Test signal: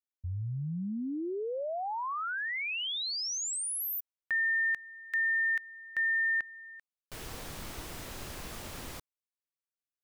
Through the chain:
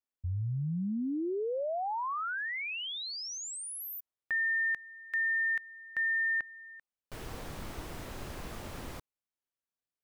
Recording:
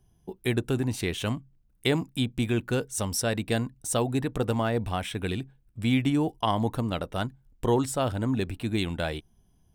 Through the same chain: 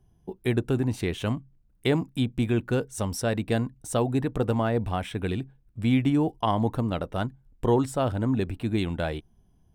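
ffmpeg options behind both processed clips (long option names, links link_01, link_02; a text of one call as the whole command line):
ffmpeg -i in.wav -af "highshelf=frequency=2300:gain=-8.5,volume=2dB" out.wav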